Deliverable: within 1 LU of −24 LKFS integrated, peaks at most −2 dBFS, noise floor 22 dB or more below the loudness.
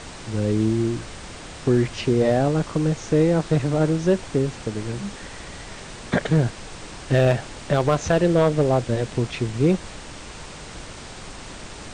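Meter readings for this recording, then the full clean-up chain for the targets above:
share of clipped samples 0.5%; peaks flattened at −9.5 dBFS; background noise floor −39 dBFS; target noise floor −44 dBFS; integrated loudness −22.0 LKFS; sample peak −9.5 dBFS; target loudness −24.0 LKFS
→ clipped peaks rebuilt −9.5 dBFS
noise reduction from a noise print 6 dB
level −2 dB

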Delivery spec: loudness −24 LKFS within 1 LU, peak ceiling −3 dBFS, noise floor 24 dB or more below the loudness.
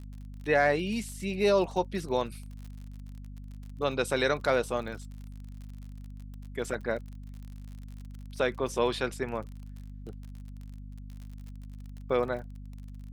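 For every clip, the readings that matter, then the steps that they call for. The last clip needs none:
crackle rate 46 per second; mains hum 50 Hz; hum harmonics up to 250 Hz; level of the hum −40 dBFS; integrated loudness −30.0 LKFS; sample peak −12.5 dBFS; target loudness −24.0 LKFS
→ click removal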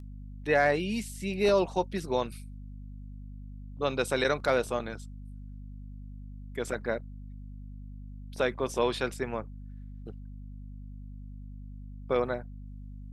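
crackle rate 0.30 per second; mains hum 50 Hz; hum harmonics up to 250 Hz; level of the hum −40 dBFS
→ hum removal 50 Hz, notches 5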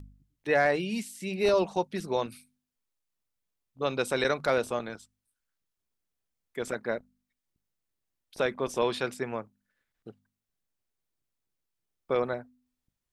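mains hum none found; integrated loudness −30.0 LKFS; sample peak −12.5 dBFS; target loudness −24.0 LKFS
→ level +6 dB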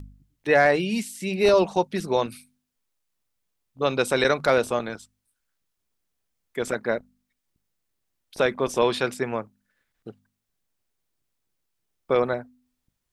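integrated loudness −24.0 LKFS; sample peak −6.5 dBFS; background noise floor −79 dBFS

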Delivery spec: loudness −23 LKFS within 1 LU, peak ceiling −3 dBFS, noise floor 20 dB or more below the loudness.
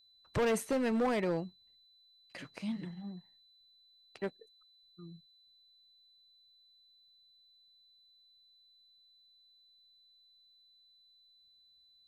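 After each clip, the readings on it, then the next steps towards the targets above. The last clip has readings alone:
share of clipped samples 0.9%; peaks flattened at −26.5 dBFS; interfering tone 4,000 Hz; level of the tone −63 dBFS; integrated loudness −35.0 LKFS; sample peak −26.5 dBFS; target loudness −23.0 LKFS
→ clipped peaks rebuilt −26.5 dBFS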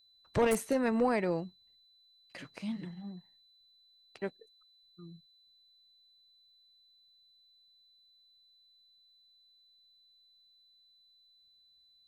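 share of clipped samples 0.0%; interfering tone 4,000 Hz; level of the tone −63 dBFS
→ notch filter 4,000 Hz, Q 30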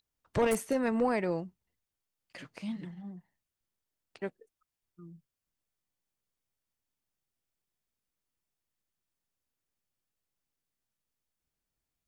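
interfering tone none found; integrated loudness −32.5 LKFS; sample peak −17.5 dBFS; target loudness −23.0 LKFS
→ level +9.5 dB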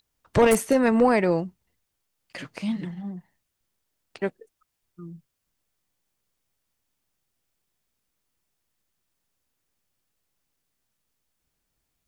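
integrated loudness −23.0 LKFS; sample peak −8.0 dBFS; background noise floor −79 dBFS

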